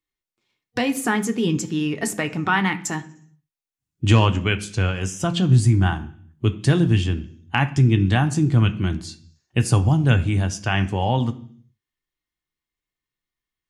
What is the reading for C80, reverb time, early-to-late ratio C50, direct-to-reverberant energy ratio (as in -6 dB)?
19.0 dB, 0.55 s, 16.0 dB, 7.0 dB